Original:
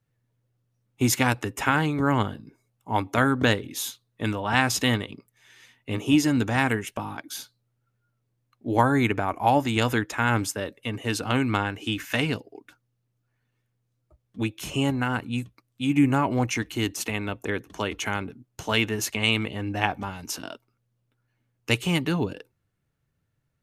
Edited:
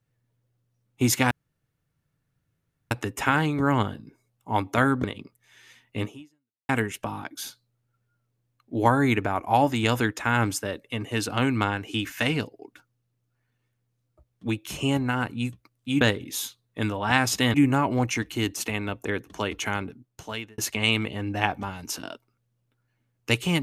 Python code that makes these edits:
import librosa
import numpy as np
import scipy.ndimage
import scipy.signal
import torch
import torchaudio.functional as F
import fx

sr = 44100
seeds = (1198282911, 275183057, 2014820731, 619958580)

y = fx.edit(x, sr, fx.insert_room_tone(at_s=1.31, length_s=1.6),
    fx.move(start_s=3.44, length_s=1.53, to_s=15.94),
    fx.fade_out_span(start_s=5.97, length_s=0.65, curve='exp'),
    fx.fade_out_span(start_s=18.25, length_s=0.73), tone=tone)